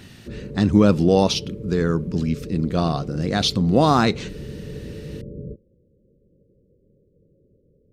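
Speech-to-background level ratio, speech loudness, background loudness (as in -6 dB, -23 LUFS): 15.5 dB, -20.0 LUFS, -35.5 LUFS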